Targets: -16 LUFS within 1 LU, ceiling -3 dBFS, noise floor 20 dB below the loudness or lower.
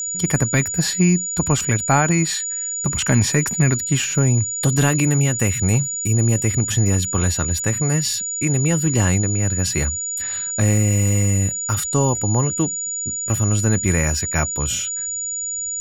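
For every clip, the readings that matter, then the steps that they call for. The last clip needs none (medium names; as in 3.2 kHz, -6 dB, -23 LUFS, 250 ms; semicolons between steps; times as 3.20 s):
steady tone 6.9 kHz; tone level -23 dBFS; loudness -19.0 LUFS; peak level -2.0 dBFS; loudness target -16.0 LUFS
-> band-stop 6.9 kHz, Q 30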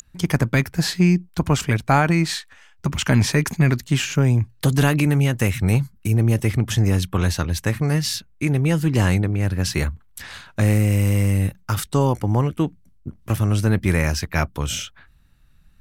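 steady tone not found; loudness -20.5 LUFS; peak level -2.5 dBFS; loudness target -16.0 LUFS
-> trim +4.5 dB; peak limiter -3 dBFS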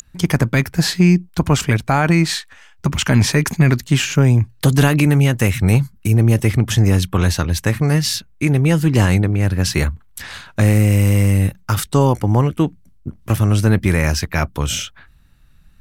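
loudness -16.5 LUFS; peak level -3.0 dBFS; noise floor -48 dBFS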